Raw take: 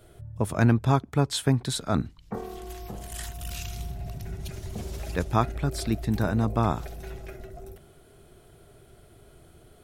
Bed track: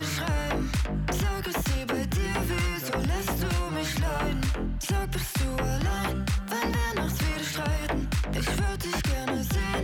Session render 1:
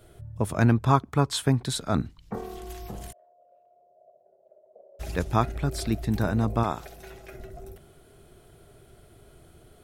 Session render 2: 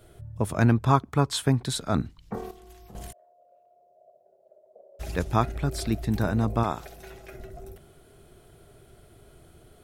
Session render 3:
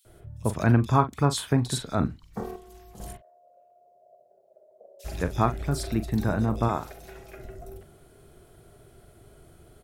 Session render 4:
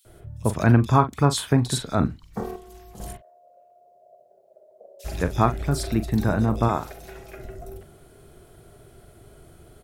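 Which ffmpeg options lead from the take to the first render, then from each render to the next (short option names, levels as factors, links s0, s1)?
-filter_complex "[0:a]asettb=1/sr,asplit=3[s0][s1][s2];[s0]atrim=end=0.824[s3];[s1]atrim=start=0.82:end=1.42,asetpts=PTS-STARTPTS,afade=t=in:d=0.004:c=qsin,afade=t=out:st=0.596:d=0.004:c=qsin,equalizer=f=1100:t=o:w=0.48:g=8[s4];[s2]atrim=start=1.416[s5];[s3][s4]acrossfade=d=0.004:c1=hsin:c2=qsin[s6];[s6][s5]acrossfade=d=0.004:c1=qsin:c2=hsin,asplit=3[s7][s8][s9];[s7]afade=t=out:st=3.11:d=0.02[s10];[s8]asuperpass=centerf=570:order=4:qfactor=4.4,afade=t=in:st=3.11:d=0.02,afade=t=out:st=4.99:d=0.02[s11];[s9]afade=t=in:st=4.99:d=0.02[s12];[s10][s11][s12]amix=inputs=3:normalize=0,asettb=1/sr,asplit=3[s13][s14][s15];[s13]atrim=end=6.634[s16];[s14]atrim=start=6.63:end=7.33,asetpts=PTS-STARTPTS,afade=t=in:d=0.004:c=qsin,afade=t=out:st=0.696:d=0.004:c=qsin,lowshelf=f=240:g=-11[s17];[s15]atrim=start=7.326[s18];[s16][s17]acrossfade=d=0.004:c1=hsin:c2=qsin[s19];[s19][s18]acrossfade=d=0.004:c1=qsin:c2=hsin"
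-filter_complex "[0:a]asplit=3[s0][s1][s2];[s0]atrim=end=2.512[s3];[s1]atrim=start=2.508:end=2.952,asetpts=PTS-STARTPTS,volume=0.299[s4];[s2]atrim=start=2.948[s5];[s3][s4]acrossfade=d=0.004:c1=hsin:c2=hsin[s6];[s6][s5]acrossfade=d=0.004:c1=hsin:c2=hsin"
-filter_complex "[0:a]asplit=2[s0][s1];[s1]adelay=41,volume=0.251[s2];[s0][s2]amix=inputs=2:normalize=0,acrossover=split=3100[s3][s4];[s3]adelay=50[s5];[s5][s4]amix=inputs=2:normalize=0"
-af "volume=1.5,alimiter=limit=0.708:level=0:latency=1"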